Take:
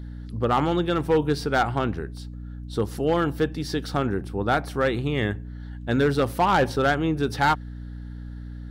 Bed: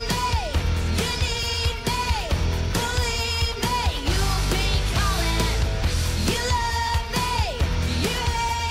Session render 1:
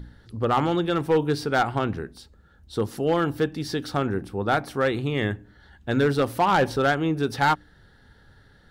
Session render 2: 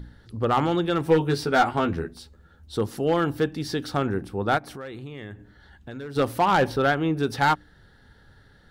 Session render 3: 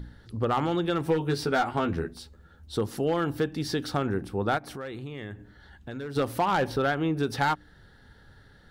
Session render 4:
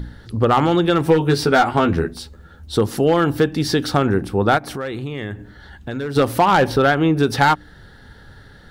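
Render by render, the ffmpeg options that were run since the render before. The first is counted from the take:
ffmpeg -i in.wav -af "bandreject=frequency=60:width_type=h:width=4,bandreject=frequency=120:width_type=h:width=4,bandreject=frequency=180:width_type=h:width=4,bandreject=frequency=240:width_type=h:width=4,bandreject=frequency=300:width_type=h:width=4" out.wav
ffmpeg -i in.wav -filter_complex "[0:a]asettb=1/sr,asplit=3[link_01][link_02][link_03];[link_01]atrim=end=1.054[link_04];[link_02]atrim=start=1.05:end=2.77,asetpts=PTS-STARTPTS,afade=type=in:duration=0.004:curve=qsin,afade=type=out:start_time=1.716:duration=0.004:curve=qsin,asplit=2[link_05][link_06];[link_06]adelay=12,volume=-3dB[link_07];[link_05][link_07]amix=inputs=2:normalize=0,atrim=end_sample=75852[link_08];[link_03]atrim=start=2.766[link_09];[link_04][link_08]acrossfade=duration=0.004:curve1=hsin:curve2=qsin[link_10];[link_10][link_09]acrossfade=duration=0.004:curve1=qsin:curve2=hsin,asplit=3[link_11][link_12][link_13];[link_11]afade=type=out:start_time=4.57:duration=0.02[link_14];[link_12]acompressor=threshold=-36dB:ratio=4:attack=3.2:release=140:knee=1:detection=peak,afade=type=in:start_time=4.57:duration=0.02,afade=type=out:start_time=6.15:duration=0.02[link_15];[link_13]afade=type=in:start_time=6.15:duration=0.02[link_16];[link_14][link_15][link_16]amix=inputs=3:normalize=0,asettb=1/sr,asplit=3[link_17][link_18][link_19];[link_17]atrim=end=6.674[link_20];[link_18]atrim=start=6.67:end=7.19,asetpts=PTS-STARTPTS,afade=type=in:duration=0.004:curve=qsin,afade=type=out:start_time=0.516:duration=0.004:curve=qsin,equalizer=frequency=7400:width_type=o:width=0.75:gain=-7[link_21];[link_19]atrim=start=7.186[link_22];[link_20][link_21]acrossfade=duration=0.004:curve1=hsin:curve2=qsin[link_23];[link_23][link_22]acrossfade=duration=0.004:curve1=qsin:curve2=hsin" out.wav
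ffmpeg -i in.wav -af "acompressor=threshold=-23dB:ratio=3" out.wav
ffmpeg -i in.wav -af "volume=10.5dB" out.wav

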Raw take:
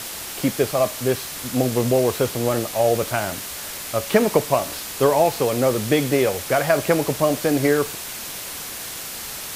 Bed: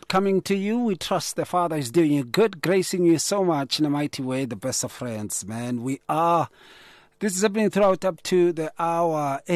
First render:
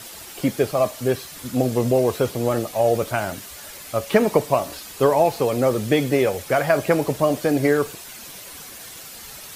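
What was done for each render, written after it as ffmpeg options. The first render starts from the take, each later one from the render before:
ffmpeg -i in.wav -af "afftdn=noise_reduction=9:noise_floor=-33" out.wav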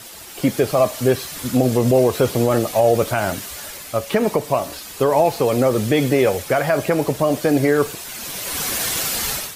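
ffmpeg -i in.wav -af "dynaudnorm=framelen=300:gausssize=3:maxgain=16.5dB,alimiter=limit=-6dB:level=0:latency=1:release=112" out.wav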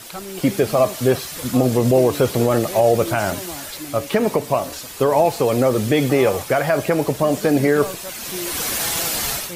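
ffmpeg -i in.wav -i bed.wav -filter_complex "[1:a]volume=-12.5dB[link_01];[0:a][link_01]amix=inputs=2:normalize=0" out.wav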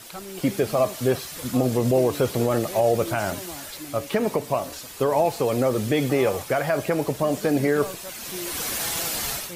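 ffmpeg -i in.wav -af "volume=-5dB" out.wav

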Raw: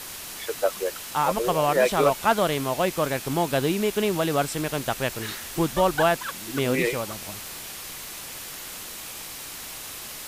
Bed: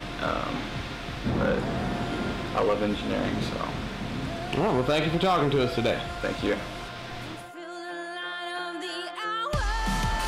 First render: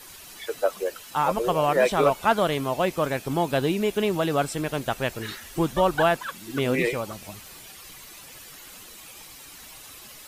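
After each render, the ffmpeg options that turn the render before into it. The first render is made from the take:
ffmpeg -i in.wav -af "afftdn=noise_reduction=10:noise_floor=-38" out.wav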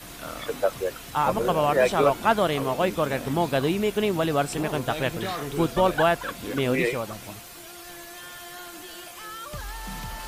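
ffmpeg -i in.wav -i bed.wav -filter_complex "[1:a]volume=-9dB[link_01];[0:a][link_01]amix=inputs=2:normalize=0" out.wav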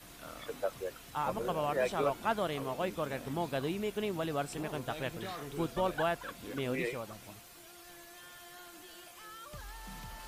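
ffmpeg -i in.wav -af "volume=-11dB" out.wav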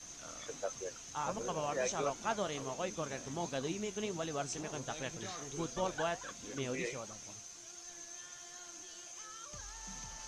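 ffmpeg -i in.wav -af "lowpass=frequency=6300:width_type=q:width=15,flanger=delay=3.8:depth=7:regen=71:speed=1.4:shape=sinusoidal" out.wav

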